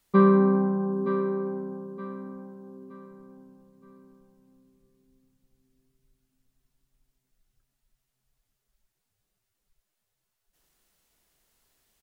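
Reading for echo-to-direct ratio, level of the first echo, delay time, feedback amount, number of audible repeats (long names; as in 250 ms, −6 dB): −8.5 dB, −9.0 dB, 920 ms, 35%, 3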